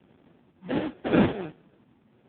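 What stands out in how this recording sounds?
phaser sweep stages 12, 1.4 Hz, lowest notch 610–2,200 Hz
aliases and images of a low sample rate 1,100 Hz, jitter 20%
AMR narrowband

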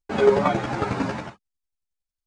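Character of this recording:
chopped level 11 Hz, depth 60%, duty 10%
a shimmering, thickened sound

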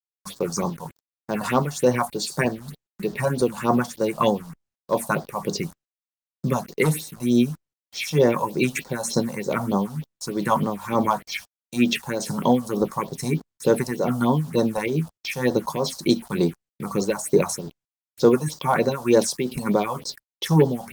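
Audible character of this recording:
tremolo triangle 2.2 Hz, depth 70%
a quantiser's noise floor 8 bits, dither none
phaser sweep stages 4, 3.3 Hz, lowest notch 340–2,500 Hz
Opus

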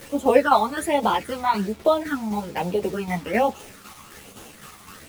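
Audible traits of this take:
phaser sweep stages 12, 1.2 Hz, lowest notch 500–1,800 Hz
a quantiser's noise floor 8 bits, dither none
tremolo saw down 3.9 Hz, depth 55%
a shimmering, thickened sound

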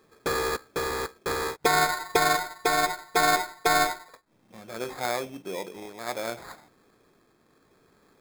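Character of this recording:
a quantiser's noise floor 12 bits, dither triangular
tremolo triangle 0.65 Hz, depth 30%
aliases and images of a low sample rate 2,900 Hz, jitter 0%

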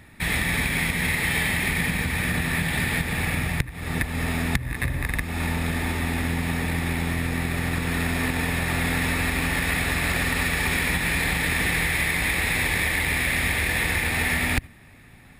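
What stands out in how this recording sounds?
background noise floor −48 dBFS
spectral slope −4.0 dB per octave

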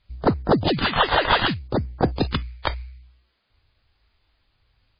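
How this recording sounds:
aliases and images of a low sample rate 2,300 Hz, jitter 20%
phaser sweep stages 2, 0.65 Hz, lowest notch 210–3,100 Hz
a quantiser's noise floor 12 bits, dither triangular
MP3

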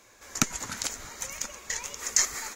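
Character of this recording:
background noise floor −57 dBFS
spectral slope −2.0 dB per octave

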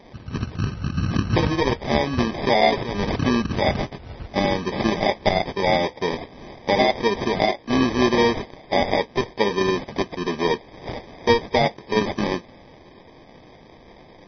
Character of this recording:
aliases and images of a low sample rate 1,400 Hz, jitter 0%
MP3

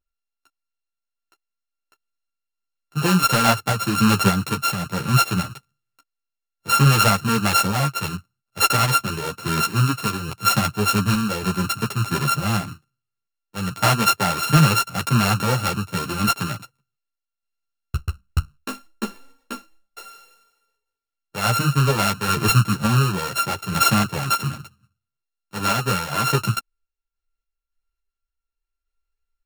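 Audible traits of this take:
a buzz of ramps at a fixed pitch in blocks of 32 samples
sample-and-hold tremolo
a shimmering, thickened sound

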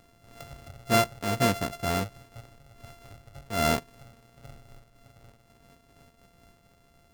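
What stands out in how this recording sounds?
a buzz of ramps at a fixed pitch in blocks of 64 samples
amplitude modulation by smooth noise

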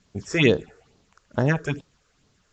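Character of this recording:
phaser sweep stages 6, 2.3 Hz, lowest notch 200–2,400 Hz
a quantiser's noise floor 12 bits, dither triangular
AAC

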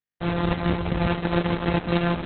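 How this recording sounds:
a buzz of ramps at a fixed pitch in blocks of 256 samples
chopped level 1.6 Hz, depth 60%, duty 85%
a quantiser's noise floor 6 bits, dither none
Opus

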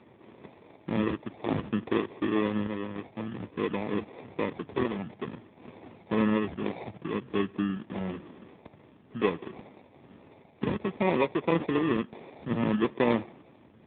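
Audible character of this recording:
phaser sweep stages 12, 0.55 Hz, lowest notch 540–1,500 Hz
aliases and images of a low sample rate 1,500 Hz, jitter 0%
AMR narrowband

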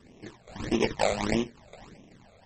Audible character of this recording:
aliases and images of a low sample rate 1,400 Hz, jitter 20%
phaser sweep stages 12, 1.6 Hz, lowest notch 290–1,500 Hz
MP3

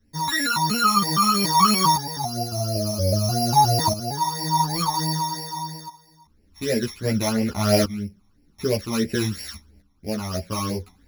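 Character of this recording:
a buzz of ramps at a fixed pitch in blocks of 8 samples
phaser sweep stages 12, 3 Hz, lowest notch 480–1,200 Hz
tremolo saw up 0.51 Hz, depth 70%
a shimmering, thickened sound

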